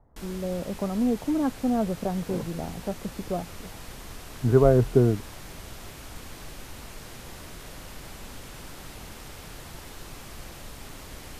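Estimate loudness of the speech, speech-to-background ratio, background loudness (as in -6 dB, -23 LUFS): -26.0 LUFS, 16.5 dB, -42.5 LUFS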